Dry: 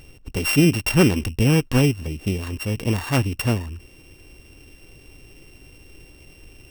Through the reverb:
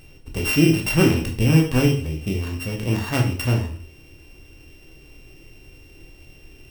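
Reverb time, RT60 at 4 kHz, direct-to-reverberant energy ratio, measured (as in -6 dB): 0.45 s, 0.40 s, 1.0 dB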